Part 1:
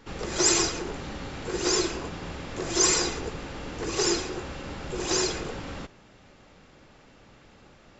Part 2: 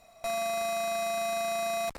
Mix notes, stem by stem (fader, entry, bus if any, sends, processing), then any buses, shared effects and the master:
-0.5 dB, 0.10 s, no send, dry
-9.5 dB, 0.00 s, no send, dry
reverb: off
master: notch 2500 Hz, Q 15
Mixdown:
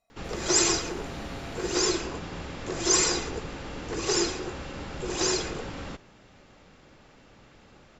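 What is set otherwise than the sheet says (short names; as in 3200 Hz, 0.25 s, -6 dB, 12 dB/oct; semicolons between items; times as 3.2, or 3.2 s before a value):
stem 2 -9.5 dB -> -20.0 dB; master: missing notch 2500 Hz, Q 15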